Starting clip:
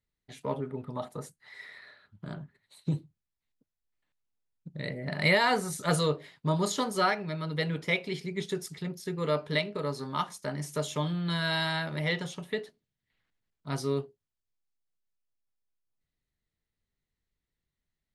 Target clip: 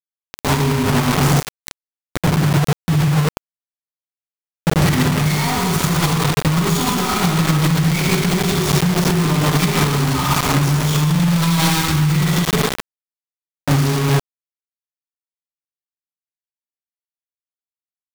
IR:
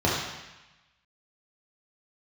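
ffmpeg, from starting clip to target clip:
-filter_complex "[0:a]asplit=3[link_01][link_02][link_03];[link_01]afade=type=out:start_time=4.98:duration=0.02[link_04];[link_02]lowshelf=frequency=92:gain=-11,afade=type=in:start_time=4.98:duration=0.02,afade=type=out:start_time=5.68:duration=0.02[link_05];[link_03]afade=type=in:start_time=5.68:duration=0.02[link_06];[link_04][link_05][link_06]amix=inputs=3:normalize=0,aeval=exprs='(tanh(100*val(0)+0.6)-tanh(0.6))/100':channel_layout=same,asplit=3[link_07][link_08][link_09];[link_07]afade=type=out:start_time=2.41:duration=0.02[link_10];[link_08]acontrast=32,afade=type=in:start_time=2.41:duration=0.02,afade=type=out:start_time=2.95:duration=0.02[link_11];[link_09]afade=type=in:start_time=2.95:duration=0.02[link_12];[link_10][link_11][link_12]amix=inputs=3:normalize=0,aecho=1:1:0.9:0.72,aecho=1:1:127:0.531[link_13];[1:a]atrim=start_sample=2205[link_14];[link_13][link_14]afir=irnorm=-1:irlink=0,acrusher=bits=3:mix=0:aa=0.000001,asettb=1/sr,asplit=3[link_15][link_16][link_17];[link_15]atrim=end=11.704[link_18];[link_16]atrim=start=11.7:end=12.17,asetpts=PTS-STARTPTS,afade=type=in:duration=0.004:curve=qsin,afade=type=out:start_time=0.466:duration=0.004:curve=qsin,equalizer=frequency=650:width_type=o:width=0.33:gain=-10[link_19];[link_17]atrim=start=12.166[link_20];[link_18][link_19]acrossfade=duration=0.004:curve1=hsin:curve2=qsin[link_21];[link_21][link_20]acrossfade=duration=0.004:curve1=qsin:curve2=hsin,alimiter=level_in=16dB:limit=-1dB:release=50:level=0:latency=1,volume=-9dB"

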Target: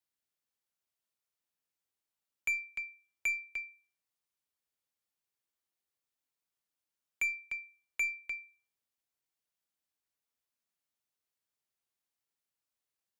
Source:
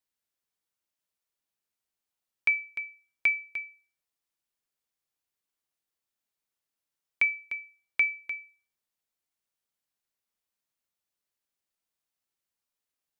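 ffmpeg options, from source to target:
ffmpeg -i in.wav -af "asoftclip=type=tanh:threshold=-24dB,afreqshift=39,aeval=exprs='0.106*(cos(1*acos(clip(val(0)/0.106,-1,1)))-cos(1*PI/2))+0.00188*(cos(6*acos(clip(val(0)/0.106,-1,1)))-cos(6*PI/2))':channel_layout=same,volume=-3dB" out.wav

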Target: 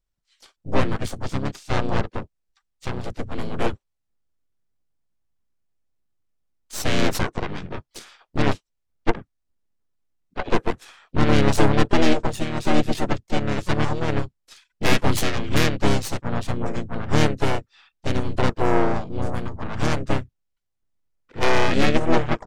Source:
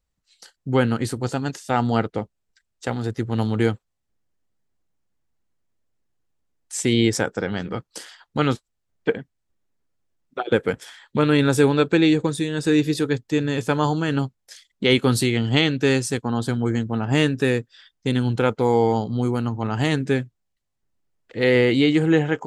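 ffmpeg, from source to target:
ffmpeg -i in.wav -filter_complex "[0:a]aeval=exprs='0.631*(cos(1*acos(clip(val(0)/0.631,-1,1)))-cos(1*PI/2))+0.0282*(cos(2*acos(clip(val(0)/0.631,-1,1)))-cos(2*PI/2))+0.251*(cos(4*acos(clip(val(0)/0.631,-1,1)))-cos(4*PI/2))+0.0891*(cos(8*acos(clip(val(0)/0.631,-1,1)))-cos(8*PI/2))':channel_layout=same,asplit=4[link_01][link_02][link_03][link_04];[link_02]asetrate=22050,aresample=44100,atempo=2,volume=-7dB[link_05];[link_03]asetrate=33038,aresample=44100,atempo=1.33484,volume=0dB[link_06];[link_04]asetrate=52444,aresample=44100,atempo=0.840896,volume=-12dB[link_07];[link_01][link_05][link_06][link_07]amix=inputs=4:normalize=0,volume=-8dB" out.wav

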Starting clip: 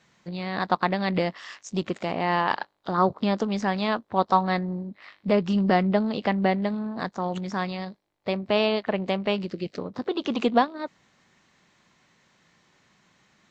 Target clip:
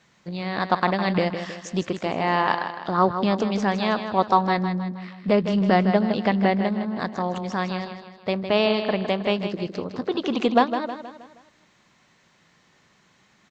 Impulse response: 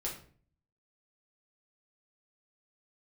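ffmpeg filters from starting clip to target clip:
-af "aecho=1:1:158|316|474|632|790:0.355|0.163|0.0751|0.0345|0.0159,volume=2dB"

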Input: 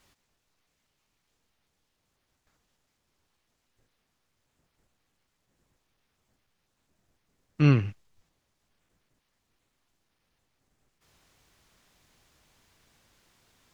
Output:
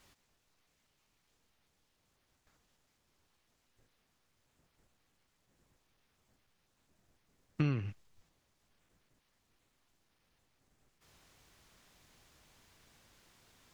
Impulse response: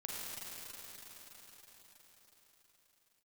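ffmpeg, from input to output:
-af "acompressor=threshold=-28dB:ratio=10"

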